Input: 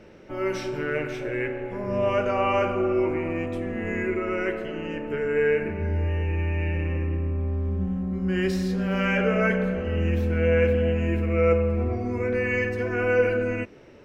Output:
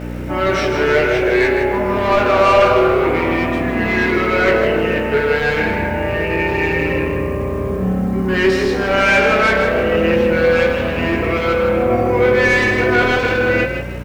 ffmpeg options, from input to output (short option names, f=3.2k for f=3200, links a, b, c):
-filter_complex "[0:a]highshelf=f=3.6k:g=-8,asplit=2[a][b];[b]alimiter=limit=-17dB:level=0:latency=1,volume=3dB[c];[a][c]amix=inputs=2:normalize=0,aeval=exprs='val(0)+0.0501*(sin(2*PI*60*n/s)+sin(2*PI*2*60*n/s)/2+sin(2*PI*3*60*n/s)/3+sin(2*PI*4*60*n/s)/4+sin(2*PI*5*60*n/s)/5)':c=same,asplit=2[d][e];[e]highpass=f=720:p=1,volume=19dB,asoftclip=type=tanh:threshold=-5dB[f];[d][f]amix=inputs=2:normalize=0,lowpass=f=4.3k:p=1,volume=-6dB,flanger=delay=17:depth=2.2:speed=0.27,acrusher=bits=9:dc=4:mix=0:aa=0.000001,asplit=5[g][h][i][j][k];[h]adelay=158,afreqshift=33,volume=-7.5dB[l];[i]adelay=316,afreqshift=66,volume=-18dB[m];[j]adelay=474,afreqshift=99,volume=-28.4dB[n];[k]adelay=632,afreqshift=132,volume=-38.9dB[o];[g][l][m][n][o]amix=inputs=5:normalize=0,volume=2.5dB"